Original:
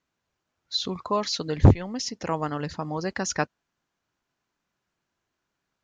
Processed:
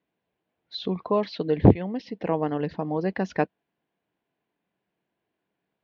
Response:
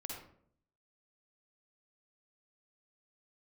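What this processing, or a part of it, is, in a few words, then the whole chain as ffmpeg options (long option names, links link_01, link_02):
guitar cabinet: -filter_complex "[0:a]highpass=78,equalizer=frequency=87:width_type=q:width=4:gain=-5,equalizer=frequency=190:width_type=q:width=4:gain=6,equalizer=frequency=310:width_type=q:width=4:gain=5,equalizer=frequency=450:width_type=q:width=4:gain=7,equalizer=frequency=690:width_type=q:width=4:gain=5,equalizer=frequency=1300:width_type=q:width=4:gain=-9,lowpass=frequency=3400:width=0.5412,lowpass=frequency=3400:width=1.3066,asettb=1/sr,asplit=3[link_01][link_02][link_03];[link_01]atrim=end=1.264[link_04];[link_02]atrim=start=1.26:end=2.25,asetpts=PTS-STARTPTS,afade=type=in:duration=0.004:curve=qsin,afade=type=out:start_time=0.986:duration=0.004:curve=qsin,lowpass=frequency=5200:width=0.5412,lowpass=frequency=5200:width=1.3066[link_05];[link_03]atrim=start=2.246[link_06];[link_04][link_05]acrossfade=duration=0.004:curve1=hsin:curve2=qsin[link_07];[link_07][link_06]acrossfade=duration=0.004:curve1=qsin:curve2=hsin,volume=-1dB"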